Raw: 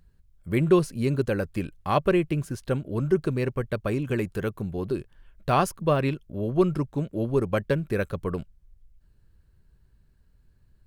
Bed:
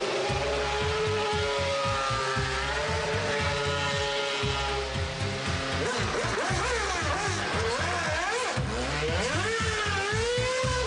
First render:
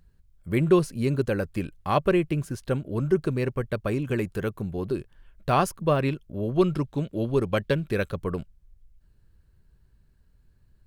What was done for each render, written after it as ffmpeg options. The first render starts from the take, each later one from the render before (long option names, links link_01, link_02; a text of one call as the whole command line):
ffmpeg -i in.wav -filter_complex "[0:a]asettb=1/sr,asplit=3[link_01][link_02][link_03];[link_01]atrim=end=6.544[link_04];[link_02]atrim=start=6.54:end=8.12,asetpts=PTS-STARTPTS,afade=type=in:duration=0.004:curve=qsin,afade=type=out:start_time=1.576:duration=0.004:curve=qsin,equalizer=frequency=3500:width_type=o:width=0.95:gain=7[link_05];[link_03]atrim=start=8.116[link_06];[link_04][link_05]acrossfade=duration=0.004:curve1=hsin:curve2=qsin[link_07];[link_07][link_06]acrossfade=duration=0.004:curve1=qsin:curve2=hsin" out.wav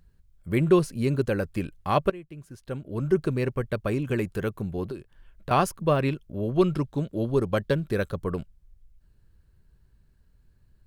ffmpeg -i in.wav -filter_complex "[0:a]asettb=1/sr,asplit=3[link_01][link_02][link_03];[link_01]atrim=end=4.854[link_04];[link_02]atrim=start=4.85:end=5.51,asetpts=PTS-STARTPTS,afade=type=in:duration=0.004:curve=qsin,afade=type=out:start_time=0.656:duration=0.004:curve=qsin,acrossover=split=440|2000[link_05][link_06][link_07];[link_05]acompressor=threshold=-37dB:ratio=4[link_08];[link_06]acompressor=threshold=-41dB:ratio=4[link_09];[link_07]acompressor=threshold=-56dB:ratio=4[link_10];[link_08][link_09][link_10]amix=inputs=3:normalize=0[link_11];[link_03]atrim=start=5.506[link_12];[link_04][link_11]acrossfade=duration=0.004:curve1=hsin:curve2=qsin[link_13];[link_13][link_12]acrossfade=duration=0.004:curve1=qsin:curve2=hsin,asettb=1/sr,asplit=3[link_14][link_15][link_16];[link_14]atrim=end=6.884[link_17];[link_15]atrim=start=6.88:end=8.28,asetpts=PTS-STARTPTS,afade=type=in:duration=0.004:curve=qsin,afade=type=out:start_time=1.396:duration=0.004:curve=qsin,equalizer=frequency=2500:width=2.1:gain=-6[link_18];[link_16]atrim=start=8.276[link_19];[link_17][link_18]acrossfade=duration=0.004:curve1=hsin:curve2=qsin[link_20];[link_20][link_19]acrossfade=duration=0.004:curve1=qsin:curve2=hsin,asplit=2[link_21][link_22];[link_21]atrim=end=2.1,asetpts=PTS-STARTPTS,afade=type=out:start_time=2.096:duration=0.004:curve=hsin:silence=0.112202[link_23];[link_22]atrim=start=2.1,asetpts=PTS-STARTPTS,afade=type=in:duration=1.04:curve=qua:silence=0.112202[link_24];[link_23][link_24]concat=n=2:v=0:a=1" out.wav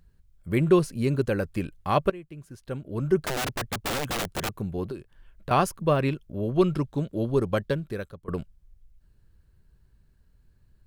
ffmpeg -i in.wav -filter_complex "[0:a]asettb=1/sr,asplit=3[link_01][link_02][link_03];[link_01]atrim=end=3.234[link_04];[link_02]atrim=start=3.23:end=4.59,asetpts=PTS-STARTPTS,afade=type=in:duration=0.004:curve=qsin,afade=type=out:start_time=1.356:duration=0.004:curve=qsin,aeval=exprs='(mod(15*val(0)+1,2)-1)/15':channel_layout=same[link_05];[link_03]atrim=start=4.586[link_06];[link_04][link_05]acrossfade=duration=0.004:curve1=hsin:curve2=qsin[link_07];[link_07][link_06]acrossfade=duration=0.004:curve1=qsin:curve2=hsin,asplit=2[link_08][link_09];[link_08]atrim=end=8.28,asetpts=PTS-STARTPTS,afade=type=out:start_time=7.52:duration=0.76:silence=0.0841395[link_10];[link_09]atrim=start=8.28,asetpts=PTS-STARTPTS,afade=type=in:duration=0.004:curve=hsin:silence=0.0841395[link_11];[link_10][link_11]concat=n=2:v=0:a=1" out.wav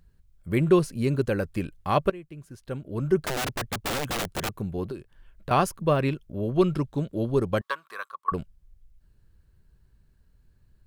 ffmpeg -i in.wav -filter_complex "[0:a]asettb=1/sr,asplit=3[link_01][link_02][link_03];[link_01]atrim=end=7.614[link_04];[link_02]atrim=start=7.61:end=8.32,asetpts=PTS-STARTPTS,afade=type=in:duration=0.004:curve=qsin,afade=type=out:start_time=0.706:duration=0.004:curve=qsin,highpass=frequency=1100:width_type=q:width=11[link_05];[link_03]atrim=start=8.316[link_06];[link_04][link_05]acrossfade=duration=0.004:curve1=hsin:curve2=qsin[link_07];[link_07][link_06]acrossfade=duration=0.004:curve1=qsin:curve2=hsin" out.wav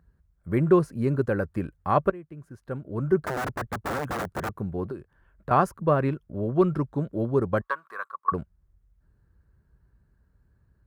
ffmpeg -i in.wav -af "highpass=frequency=40:width=0.5412,highpass=frequency=40:width=1.3066,highshelf=frequency=2100:width_type=q:width=1.5:gain=-10" out.wav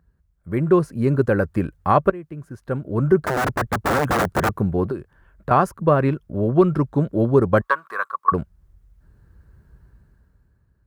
ffmpeg -i in.wav -af "dynaudnorm=framelen=140:gausssize=13:maxgain=12.5dB,alimiter=limit=-5dB:level=0:latency=1:release=355" out.wav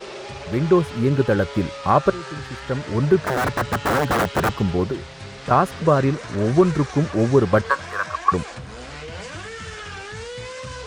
ffmpeg -i in.wav -i bed.wav -filter_complex "[1:a]volume=-6.5dB[link_01];[0:a][link_01]amix=inputs=2:normalize=0" out.wav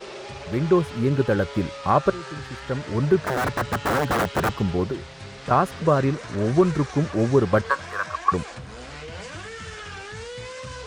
ffmpeg -i in.wav -af "volume=-2.5dB" out.wav